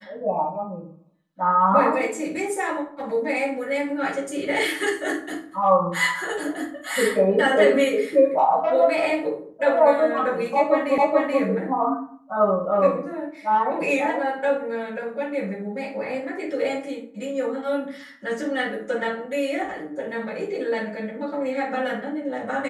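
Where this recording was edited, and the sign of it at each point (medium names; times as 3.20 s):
10.98 s: repeat of the last 0.43 s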